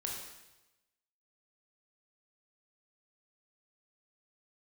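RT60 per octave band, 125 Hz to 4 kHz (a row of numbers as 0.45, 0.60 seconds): 1.2, 1.0, 1.0, 1.0, 1.0, 1.0 seconds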